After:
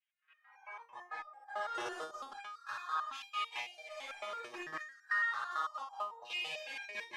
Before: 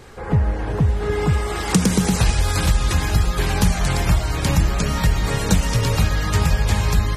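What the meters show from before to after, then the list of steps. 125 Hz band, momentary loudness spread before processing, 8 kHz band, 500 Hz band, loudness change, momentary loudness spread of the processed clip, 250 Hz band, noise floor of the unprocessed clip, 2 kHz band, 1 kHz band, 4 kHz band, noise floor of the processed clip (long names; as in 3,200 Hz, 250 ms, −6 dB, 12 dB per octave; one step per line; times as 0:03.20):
below −40 dB, 3 LU, −31.0 dB, −22.5 dB, −20.0 dB, 12 LU, −36.0 dB, −26 dBFS, −11.0 dB, −12.0 dB, −17.5 dB, −73 dBFS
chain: lower of the sound and its delayed copy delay 8 ms
on a send: flutter between parallel walls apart 9.7 metres, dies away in 1.4 s
on the sum: gate pattern "...xxxxxx.x.x" 162 BPM −12 dB
spectral tilt −1.5 dB per octave
auto-filter high-pass saw down 0.42 Hz 350–1,800 Hz
dynamic equaliser 520 Hz, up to −3 dB, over −36 dBFS, Q 0.7
auto-filter band-pass saw down 0.32 Hz 1,000–2,800 Hz
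in parallel at −1 dB: brickwall limiter −27 dBFS, peak gain reduction 11 dB
on the sum: noise reduction from a noise print of the clip's start 24 dB
soft clipping −20 dBFS, distortion −18 dB
step-sequenced resonator 9 Hz 120–800 Hz
level +2.5 dB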